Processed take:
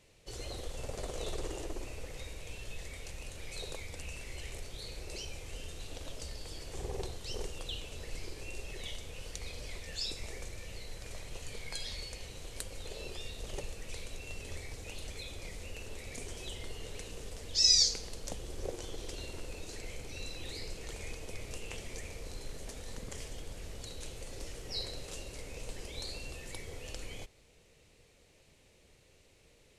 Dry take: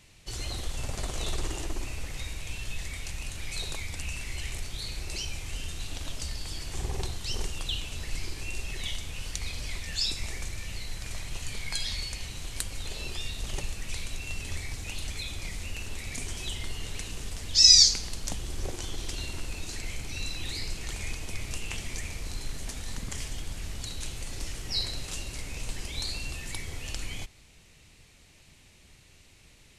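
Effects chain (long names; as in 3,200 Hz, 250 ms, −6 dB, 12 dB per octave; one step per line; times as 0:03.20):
parametric band 490 Hz +13 dB 0.85 octaves
level −8.5 dB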